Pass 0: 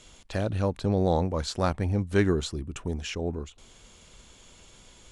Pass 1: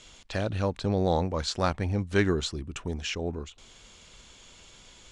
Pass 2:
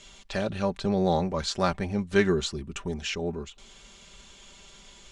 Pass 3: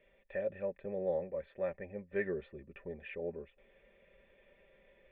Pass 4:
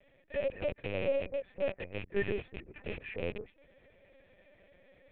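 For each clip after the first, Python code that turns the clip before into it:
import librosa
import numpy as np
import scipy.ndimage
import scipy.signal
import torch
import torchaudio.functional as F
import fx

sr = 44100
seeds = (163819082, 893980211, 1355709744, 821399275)

y1 = scipy.signal.sosfilt(scipy.signal.butter(2, 6800.0, 'lowpass', fs=sr, output='sos'), x)
y1 = fx.tilt_shelf(y1, sr, db=-3.0, hz=1100.0)
y1 = y1 * librosa.db_to_amplitude(1.0)
y2 = y1 + 0.59 * np.pad(y1, (int(5.1 * sr / 1000.0), 0))[:len(y1)]
y3 = fx.formant_cascade(y2, sr, vowel='e')
y3 = fx.rider(y3, sr, range_db=5, speed_s=2.0)
y3 = y3 * librosa.db_to_amplitude(-1.0)
y4 = fx.rattle_buzz(y3, sr, strikes_db=-48.0, level_db=-31.0)
y4 = fx.lpc_vocoder(y4, sr, seeds[0], excitation='pitch_kept', order=8)
y4 = y4 * librosa.db_to_amplitude(3.0)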